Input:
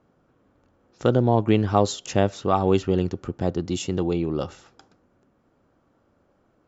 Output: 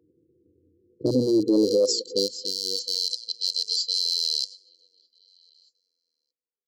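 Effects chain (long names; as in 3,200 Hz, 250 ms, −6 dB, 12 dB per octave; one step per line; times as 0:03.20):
loose part that buzzes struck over −27 dBFS, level −10 dBFS
on a send: echo through a band-pass that steps 622 ms, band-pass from 850 Hz, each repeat 1.4 octaves, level −6.5 dB
on the sum: noise gate −55 dBFS, range −8 dB
graphic EQ with 10 bands 250 Hz +7 dB, 500 Hz +7 dB, 1,000 Hz +4 dB, 2,000 Hz +11 dB
low-pass that shuts in the quiet parts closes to 460 Hz, open at −9 dBFS
linear-phase brick-wall band-stop 490–3,000 Hz
high-pass filter sweep 86 Hz → 3,000 Hz, 0:00.88–0:03.10
reversed playback
downward compressor 10 to 1, threshold −12 dBFS, peak gain reduction 11 dB
reversed playback
brickwall limiter −13 dBFS, peak gain reduction 8 dB
mains-hum notches 60/120/180/240 Hz
formants moved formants +5 semitones
level +2 dB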